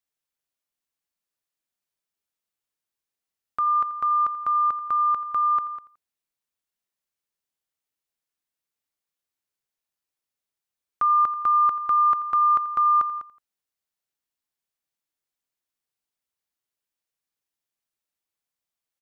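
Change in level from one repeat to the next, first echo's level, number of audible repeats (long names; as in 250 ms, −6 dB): −6.0 dB, −16.5 dB, 2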